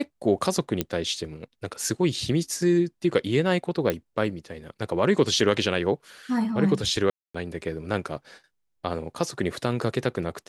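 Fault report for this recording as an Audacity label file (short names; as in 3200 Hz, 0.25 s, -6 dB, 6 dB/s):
0.810000	0.810000	pop -9 dBFS
3.900000	3.900000	pop -11 dBFS
7.100000	7.340000	gap 0.245 s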